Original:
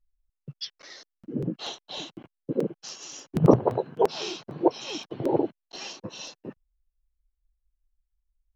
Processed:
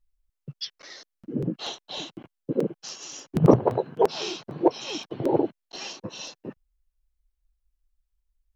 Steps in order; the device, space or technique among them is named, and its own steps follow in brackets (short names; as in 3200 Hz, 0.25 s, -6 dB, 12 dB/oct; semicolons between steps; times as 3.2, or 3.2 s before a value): parallel distortion (in parallel at -13.5 dB: hard clip -15.5 dBFS, distortion -9 dB)